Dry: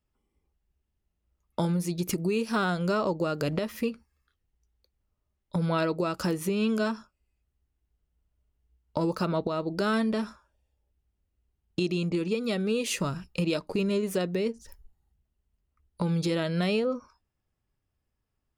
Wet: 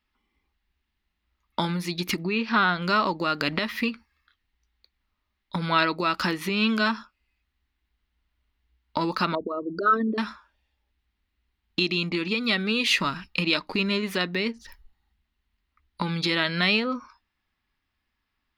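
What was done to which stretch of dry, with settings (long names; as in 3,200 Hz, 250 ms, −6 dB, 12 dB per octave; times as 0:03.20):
0:02.23–0:02.82: high-frequency loss of the air 180 metres
0:09.35–0:10.18: spectral envelope exaggerated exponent 3
whole clip: octave-band graphic EQ 125/250/500/1,000/2,000/4,000/8,000 Hz −8/+6/−7/+7/+11/+12/−8 dB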